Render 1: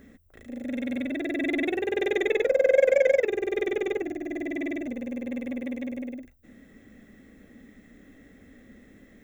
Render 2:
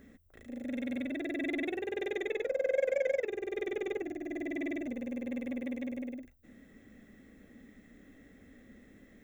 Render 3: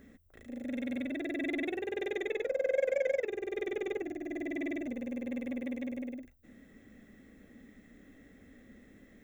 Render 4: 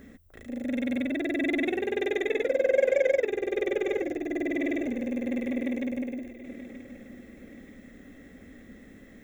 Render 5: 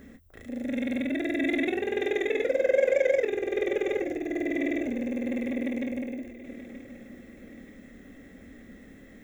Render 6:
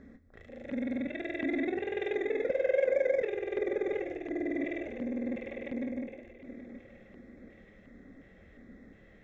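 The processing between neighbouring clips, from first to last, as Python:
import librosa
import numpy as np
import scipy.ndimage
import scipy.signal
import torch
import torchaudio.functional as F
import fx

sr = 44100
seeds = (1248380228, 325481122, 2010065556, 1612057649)

y1 = fx.rider(x, sr, range_db=4, speed_s=2.0)
y1 = y1 * librosa.db_to_amplitude(-8.5)
y2 = y1
y3 = fx.echo_feedback(y2, sr, ms=928, feedback_pct=41, wet_db=-14.5)
y3 = y3 * librosa.db_to_amplitude(7.0)
y4 = fx.doubler(y3, sr, ms=26.0, db=-10.5)
y5 = fx.filter_lfo_notch(y4, sr, shape='square', hz=1.4, low_hz=260.0, high_hz=2900.0, q=1.6)
y5 = fx.air_absorb(y5, sr, metres=160.0)
y5 = y5 + 10.0 ** (-16.5 / 20.0) * np.pad(y5, (int(173 * sr / 1000.0), 0))[:len(y5)]
y5 = y5 * librosa.db_to_amplitude(-3.5)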